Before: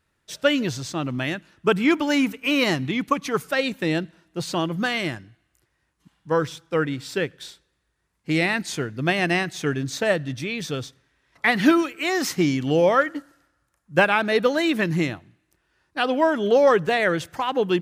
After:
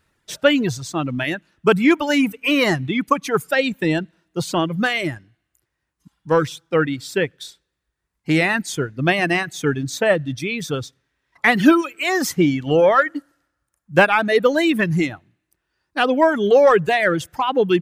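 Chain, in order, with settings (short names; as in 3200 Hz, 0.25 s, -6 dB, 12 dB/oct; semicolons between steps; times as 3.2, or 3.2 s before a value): dynamic EQ 4700 Hz, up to -5 dB, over -41 dBFS, Q 1.6; in parallel at -9.5 dB: soft clip -20.5 dBFS, distortion -9 dB; on the sum: reverb removal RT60 1.9 s; gain +3.5 dB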